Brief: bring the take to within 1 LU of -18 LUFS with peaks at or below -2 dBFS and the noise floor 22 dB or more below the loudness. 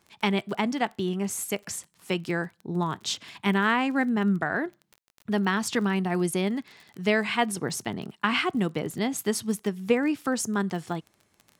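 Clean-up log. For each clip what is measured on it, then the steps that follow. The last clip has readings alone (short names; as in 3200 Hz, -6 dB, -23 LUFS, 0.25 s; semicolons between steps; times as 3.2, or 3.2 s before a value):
ticks 29/s; loudness -27.5 LUFS; peak -9.5 dBFS; loudness target -18.0 LUFS
-> de-click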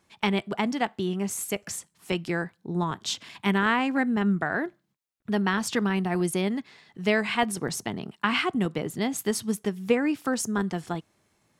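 ticks 0.26/s; loudness -27.5 LUFS; peak -9.5 dBFS; loudness target -18.0 LUFS
-> gain +9.5 dB; limiter -2 dBFS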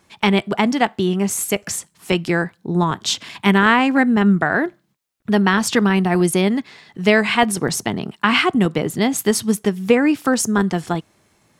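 loudness -18.0 LUFS; peak -2.0 dBFS; noise floor -62 dBFS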